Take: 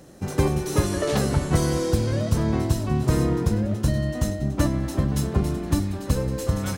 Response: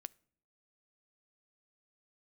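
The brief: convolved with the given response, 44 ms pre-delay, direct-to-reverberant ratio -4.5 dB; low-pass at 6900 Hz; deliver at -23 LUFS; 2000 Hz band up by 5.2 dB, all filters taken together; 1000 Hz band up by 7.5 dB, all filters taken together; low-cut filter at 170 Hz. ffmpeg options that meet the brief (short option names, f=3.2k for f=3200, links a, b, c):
-filter_complex "[0:a]highpass=170,lowpass=6.9k,equalizer=f=1k:t=o:g=8.5,equalizer=f=2k:t=o:g=3.5,asplit=2[a][b];[1:a]atrim=start_sample=2205,adelay=44[c];[b][c]afir=irnorm=-1:irlink=0,volume=9.5dB[d];[a][d]amix=inputs=2:normalize=0,volume=-3.5dB"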